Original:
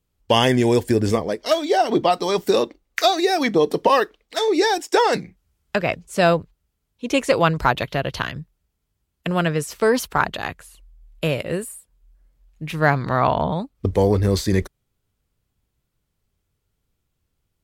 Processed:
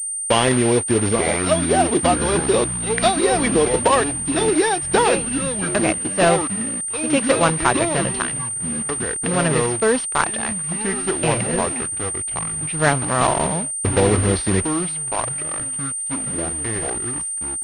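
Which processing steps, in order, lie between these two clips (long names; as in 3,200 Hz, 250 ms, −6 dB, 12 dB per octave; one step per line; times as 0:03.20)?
one scale factor per block 3 bits
delay with pitch and tempo change per echo 762 ms, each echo −6 semitones, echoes 3, each echo −6 dB
dead-zone distortion −40.5 dBFS
switching amplifier with a slow clock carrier 8,800 Hz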